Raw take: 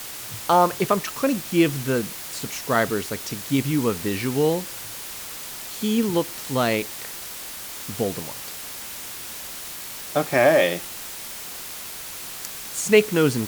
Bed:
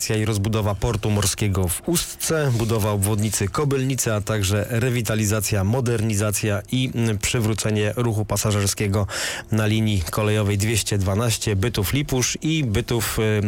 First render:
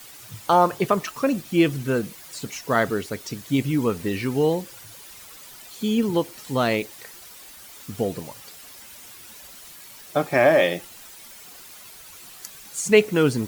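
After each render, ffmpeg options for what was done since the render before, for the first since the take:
-af "afftdn=nr=11:nf=-36"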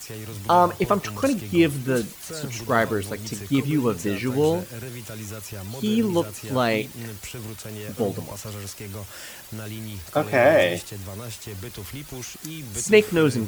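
-filter_complex "[1:a]volume=-15dB[a];[0:a][a]amix=inputs=2:normalize=0"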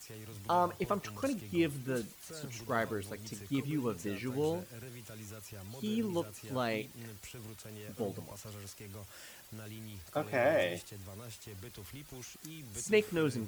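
-af "volume=-12.5dB"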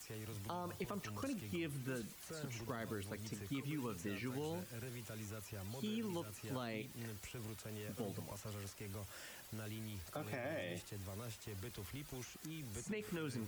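-filter_complex "[0:a]alimiter=level_in=3.5dB:limit=-24dB:level=0:latency=1:release=73,volume=-3.5dB,acrossover=split=320|830|2500[a][b][c][d];[a]acompressor=threshold=-43dB:ratio=4[e];[b]acompressor=threshold=-51dB:ratio=4[f];[c]acompressor=threshold=-50dB:ratio=4[g];[d]acompressor=threshold=-53dB:ratio=4[h];[e][f][g][h]amix=inputs=4:normalize=0"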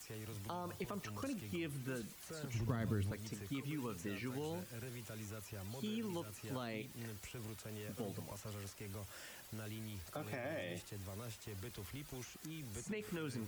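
-filter_complex "[0:a]asettb=1/sr,asplit=3[a][b][c];[a]atrim=end=2.544[d];[b]atrim=start=2.54:end=3.12,asetpts=PTS-STARTPTS,afade=t=in:d=0.004:c=qsin,afade=t=out:st=0.576:d=0.004:c=qsin,bass=f=250:g=12,treble=f=4k:g=-2[e];[c]atrim=start=3.116[f];[d][e]acrossfade=d=0.004:c1=hsin:c2=qsin[g];[g][f]acrossfade=d=0.004:c1=qsin:c2=hsin"

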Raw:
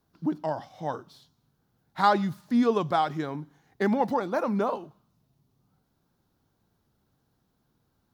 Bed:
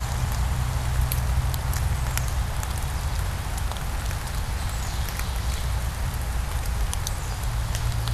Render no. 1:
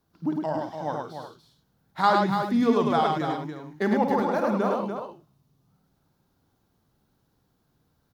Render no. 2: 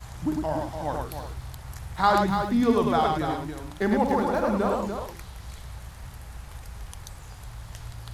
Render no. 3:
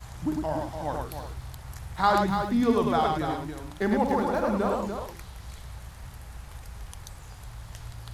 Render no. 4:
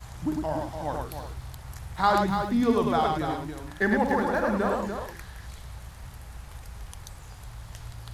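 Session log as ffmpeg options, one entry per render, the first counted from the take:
-af "aecho=1:1:52|104|291|361:0.335|0.708|0.422|0.224"
-filter_complex "[1:a]volume=-13.5dB[a];[0:a][a]amix=inputs=2:normalize=0"
-af "volume=-1.5dB"
-filter_complex "[0:a]asettb=1/sr,asplit=3[a][b][c];[a]atrim=end=3.674[d];[b]atrim=start=3.67:end=5.47,asetpts=PTS-STARTPTS,afade=t=in:d=0.004:c=qsin,afade=t=out:st=1.796:d=0.004:c=qsin,equalizer=f=1.7k:t=o:w=0.26:g=12[e];[c]atrim=start=5.466[f];[d][e]acrossfade=d=0.004:c1=hsin:c2=qsin[g];[g][f]acrossfade=d=0.004:c1=qsin:c2=hsin"

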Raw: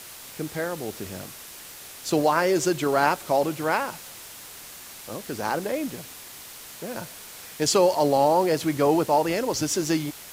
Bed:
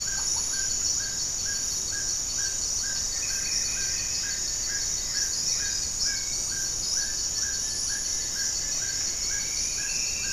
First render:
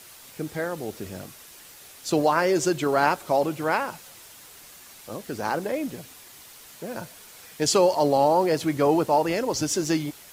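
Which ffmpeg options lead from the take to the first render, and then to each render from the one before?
-af "afftdn=nr=6:nf=-43"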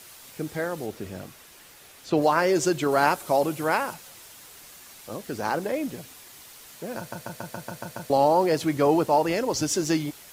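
-filter_complex "[0:a]asettb=1/sr,asplit=3[a][b][c];[a]atrim=end=0.864[d];[b]atrim=start=0.86:end=2.22,asetpts=PTS-STARTPTS,afade=t=in:d=0.004:c=qsin,afade=t=out:st=1.356:d=0.004:c=qsin,acrossover=split=3500[e][f];[f]acompressor=threshold=-48dB:ratio=4:attack=1:release=60[g];[e][g]amix=inputs=2:normalize=0[h];[c]atrim=start=2.216[i];[d][h]acrossfade=d=0.004:c1=hsin:c2=qsin[j];[j][i]acrossfade=d=0.004:c1=qsin:c2=hsin,asettb=1/sr,asplit=3[k][l][m];[k]atrim=end=2.914[n];[l]atrim=start=2.91:end=3.94,asetpts=PTS-STARTPTS,afade=t=in:d=0.004:c=qsin,afade=t=out:st=1.026:d=0.004:c=qsin,equalizer=f=11k:w=0.79:g=6[o];[m]atrim=start=3.936[p];[n][o]acrossfade=d=0.004:c1=hsin:c2=qsin[q];[q][p]acrossfade=d=0.004:c1=qsin:c2=hsin,asplit=9[r][s][t][u][v][w][x][y][z];[r]atrim=end=7.122[aa];[s]atrim=start=6.978:end=7.122[ab];[t]atrim=start=6.978:end=7.122[ac];[u]atrim=start=6.978:end=7.122[ad];[v]atrim=start=6.978:end=7.122[ae];[w]atrim=start=6.978:end=7.122[af];[x]atrim=start=6.978:end=7.122[ag];[y]atrim=start=6.978:end=7.122[ah];[z]atrim=start=8.098[ai];[aa][ab]acrossfade=d=0.004:c1=hsin:c2=hsin[aj];[aj][ac]acrossfade=d=0.004:c1=hsin:c2=hsin[ak];[ak][ad]acrossfade=d=0.004:c1=hsin:c2=hsin[al];[al][ae]acrossfade=d=0.004:c1=hsin:c2=hsin[am];[am][af]acrossfade=d=0.004:c1=hsin:c2=hsin[an];[an][ag]acrossfade=d=0.004:c1=hsin:c2=hsin[ao];[ao][ah]acrossfade=d=0.004:c1=hsin:c2=hsin[ap];[ap][ai]acrossfade=d=0.004:c1=hsin:c2=hsin"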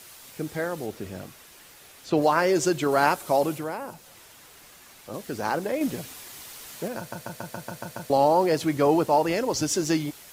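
-filter_complex "[0:a]asettb=1/sr,asplit=3[a][b][c];[a]atrim=end=3.584[d];[b]atrim=start=3.58:end=5.14,asetpts=PTS-STARTPTS,afade=t=in:d=0.004:c=qsin,afade=t=out:st=1.556:d=0.004:c=qsin,acrossover=split=800|3000|7200[e][f][g][h];[e]acompressor=threshold=-31dB:ratio=3[i];[f]acompressor=threshold=-45dB:ratio=3[j];[g]acompressor=threshold=-57dB:ratio=3[k];[h]acompressor=threshold=-54dB:ratio=3[l];[i][j][k][l]amix=inputs=4:normalize=0[m];[c]atrim=start=5.136[n];[d][m]acrossfade=d=0.004:c1=hsin:c2=qsin[o];[o][n]acrossfade=d=0.004:c1=qsin:c2=hsin,asplit=3[p][q][r];[p]atrim=end=5.812[s];[q]atrim=start=5.808:end=6.882,asetpts=PTS-STARTPTS,volume=4.5dB[t];[r]atrim=start=6.878[u];[s][t]acrossfade=d=0.004:c1=hsin:c2=hsin[v];[v][u]acrossfade=d=0.004:c1=hsin:c2=hsin"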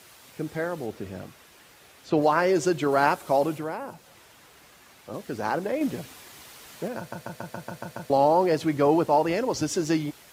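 -af "highpass=45,highshelf=f=4.7k:g=-8"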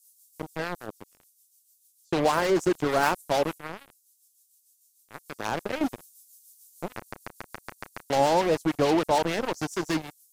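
-filter_complex "[0:a]acrossover=split=6600[a][b];[a]acrusher=bits=3:mix=0:aa=0.5[c];[c][b]amix=inputs=2:normalize=0,acrossover=split=980[d][e];[d]aeval=exprs='val(0)*(1-0.5/2+0.5/2*cos(2*PI*6.7*n/s))':c=same[f];[e]aeval=exprs='val(0)*(1-0.5/2-0.5/2*cos(2*PI*6.7*n/s))':c=same[g];[f][g]amix=inputs=2:normalize=0"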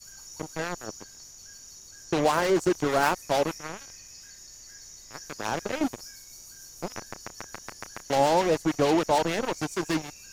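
-filter_complex "[1:a]volume=-18.5dB[a];[0:a][a]amix=inputs=2:normalize=0"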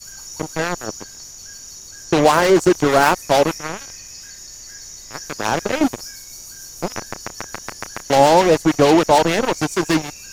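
-af "volume=10dB,alimiter=limit=-1dB:level=0:latency=1"

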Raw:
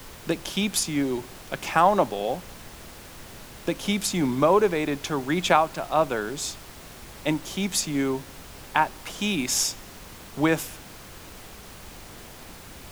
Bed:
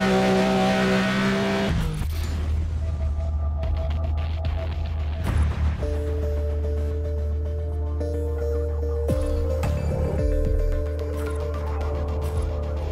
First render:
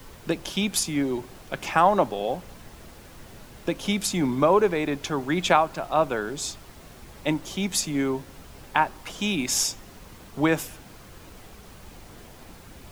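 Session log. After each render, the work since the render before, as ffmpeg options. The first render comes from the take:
-af "afftdn=nr=6:nf=-44"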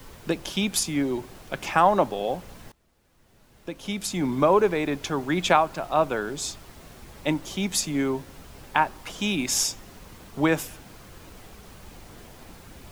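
-filter_complex "[0:a]asplit=2[a][b];[a]atrim=end=2.72,asetpts=PTS-STARTPTS,afade=t=out:st=2.716:d=0.004:c=hsin:silence=0.0749894[c];[b]atrim=start=2.72,asetpts=PTS-STARTPTS,afade=t=in:d=1.69:c=qua:silence=0.0749894[d];[c][d]concat=n=2:v=0:a=1"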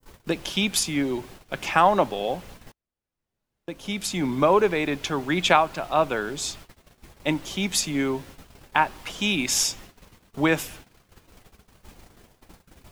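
-af "agate=range=-25dB:threshold=-43dB:ratio=16:detection=peak,adynamicequalizer=threshold=0.0126:dfrequency=2800:dqfactor=0.89:tfrequency=2800:tqfactor=0.89:attack=5:release=100:ratio=0.375:range=2.5:mode=boostabove:tftype=bell"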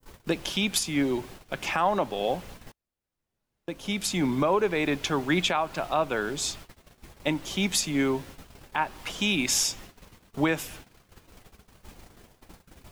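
-af "alimiter=limit=-13.5dB:level=0:latency=1:release=242"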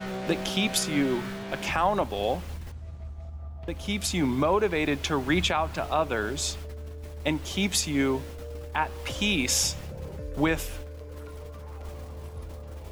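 -filter_complex "[1:a]volume=-14dB[a];[0:a][a]amix=inputs=2:normalize=0"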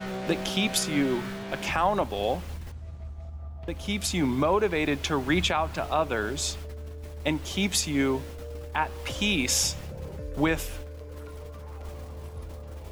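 -af anull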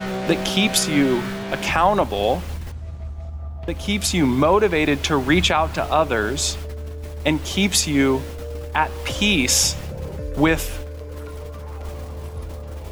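-af "volume=7.5dB"

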